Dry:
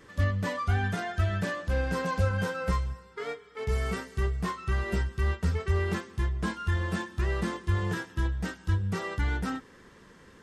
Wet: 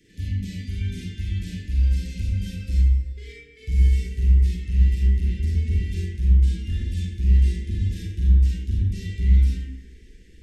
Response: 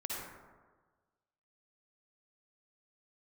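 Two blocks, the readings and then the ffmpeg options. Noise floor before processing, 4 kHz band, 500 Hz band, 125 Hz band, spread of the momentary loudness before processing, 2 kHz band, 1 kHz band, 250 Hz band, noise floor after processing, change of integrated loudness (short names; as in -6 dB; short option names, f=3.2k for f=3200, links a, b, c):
-54 dBFS, -0.5 dB, -12.5 dB, +8.0 dB, 5 LU, -10.0 dB, under -40 dB, +1.0 dB, -49 dBFS, +7.5 dB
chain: -filter_complex "[0:a]asubboost=boost=9:cutoff=51,acrossover=split=270|2100[a][b][c];[b]acompressor=threshold=-47dB:ratio=6[d];[a][d][c]amix=inputs=3:normalize=0,asoftclip=type=hard:threshold=-18dB,asuperstop=centerf=920:order=8:qfactor=0.55[e];[1:a]atrim=start_sample=2205,asetrate=61740,aresample=44100[f];[e][f]afir=irnorm=-1:irlink=0,volume=3.5dB"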